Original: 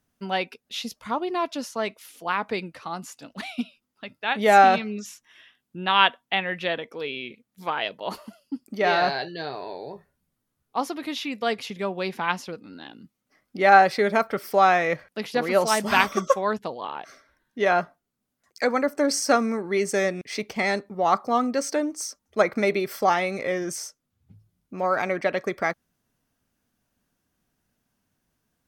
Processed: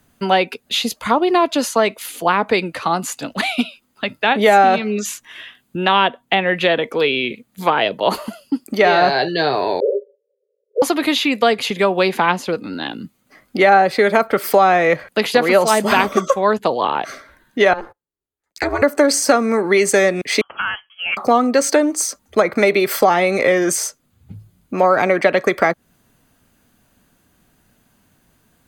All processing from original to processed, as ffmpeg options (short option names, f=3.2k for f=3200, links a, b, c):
-filter_complex "[0:a]asettb=1/sr,asplit=3[a][b][c];[a]atrim=end=9.804[d];[b]atrim=start=9.8:end=10.82,asetpts=PTS-STARTPTS,afade=t=in:d=0.004:c=qsin,afade=t=out:st=1.016:d=0.004:c=qsin,acontrast=73,asuperpass=centerf=480:order=20:qfactor=2.4[e];[c]atrim=start=10.816[f];[d][e]acrossfade=d=0.004:c1=hsin:c2=qsin[g];[g][f]acrossfade=d=0.004:c1=qsin:c2=hsin,asettb=1/sr,asplit=3[h][i][j];[h]atrim=end=17.734[k];[i]atrim=start=17.73:end=18.82,asetpts=PTS-STARTPTS,afade=t=in:d=0.004:c=qsin,afade=t=out:st=1.086:d=0.004:c=qsin,agate=range=-24dB:threshold=-53dB:ratio=16:release=100:detection=peak,acompressor=threshold=-28dB:ratio=12:attack=3.2:release=140:knee=1:detection=peak,aeval=exprs='val(0)*sin(2*PI*170*n/s)':c=same[l];[j]atrim=start=18.816[m];[k][l]acrossfade=d=0.004:c1=hsin:c2=qsin[n];[n][m]acrossfade=d=0.004:c1=qsin:c2=hsin,asettb=1/sr,asplit=3[o][p][q];[o]atrim=end=20.414[r];[p]atrim=start=20.41:end=21.17,asetpts=PTS-STARTPTS,afade=t=in:d=0.004:c=qsin,afade=t=out:st=0.756:d=0.004:c=qsin,aderivative,lowpass=f=3k:t=q:w=0.5098,lowpass=f=3k:t=q:w=0.6013,lowpass=f=3k:t=q:w=0.9,lowpass=f=3k:t=q:w=2.563,afreqshift=-3500[s];[q]atrim=start=21.166[t];[r][s]acrossfade=d=0.004:c1=hsin:c2=qsin[u];[u][t]acrossfade=d=0.004:c1=qsin:c2=hsin,bandreject=f=5.5k:w=5.7,acrossover=split=280|620[v][w][x];[v]acompressor=threshold=-46dB:ratio=4[y];[w]acompressor=threshold=-33dB:ratio=4[z];[x]acompressor=threshold=-33dB:ratio=4[aa];[y][z][aa]amix=inputs=3:normalize=0,alimiter=level_in=17.5dB:limit=-1dB:release=50:level=0:latency=1,volume=-1dB"